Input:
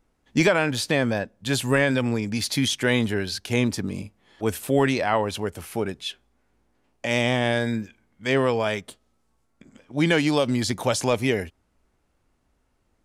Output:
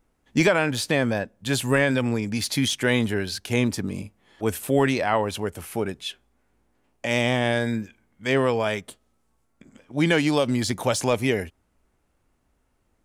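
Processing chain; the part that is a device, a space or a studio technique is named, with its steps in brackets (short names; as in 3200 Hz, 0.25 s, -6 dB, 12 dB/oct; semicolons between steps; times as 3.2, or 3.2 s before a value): exciter from parts (in parallel at -8 dB: HPF 4700 Hz 12 dB/oct + soft clip -33 dBFS, distortion -8 dB + HPF 3200 Hz)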